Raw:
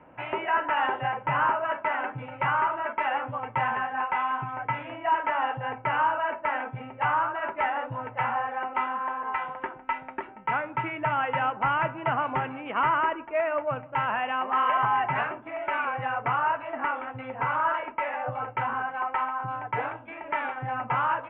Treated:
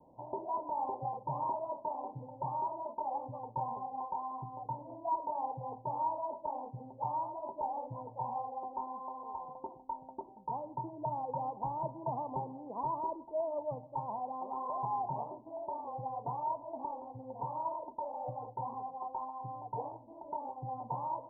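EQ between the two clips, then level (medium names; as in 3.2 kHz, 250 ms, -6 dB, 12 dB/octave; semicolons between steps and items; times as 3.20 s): steep low-pass 1 kHz 96 dB/octave; -8.0 dB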